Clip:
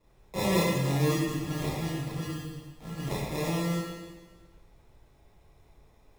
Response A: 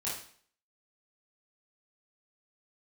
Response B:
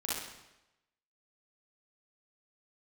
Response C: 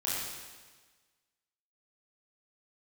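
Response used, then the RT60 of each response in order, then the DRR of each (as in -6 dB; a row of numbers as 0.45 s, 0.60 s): C; 0.50 s, 0.95 s, 1.4 s; -8.5 dB, -7.0 dB, -8.0 dB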